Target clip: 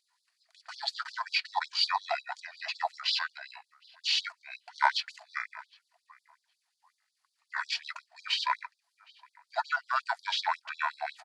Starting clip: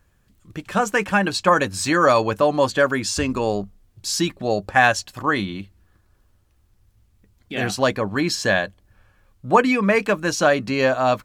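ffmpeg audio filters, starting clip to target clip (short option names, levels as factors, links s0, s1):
-filter_complex "[0:a]equalizer=f=800:t=o:w=0.33:g=8,equalizer=f=3150:t=o:w=0.33:g=6,equalizer=f=8000:t=o:w=0.33:g=9,asetrate=25476,aresample=44100,atempo=1.73107,asplit=2[s0][s1];[s1]adelay=765,lowpass=f=2400:p=1,volume=0.0708,asplit=2[s2][s3];[s3]adelay=765,lowpass=f=2400:p=1,volume=0.24[s4];[s2][s4]amix=inputs=2:normalize=0[s5];[s0][s5]amix=inputs=2:normalize=0,afftfilt=real='re*gte(b*sr/1024,610*pow(3500/610,0.5+0.5*sin(2*PI*5.5*pts/sr)))':imag='im*gte(b*sr/1024,610*pow(3500/610,0.5+0.5*sin(2*PI*5.5*pts/sr)))':win_size=1024:overlap=0.75,volume=0.562"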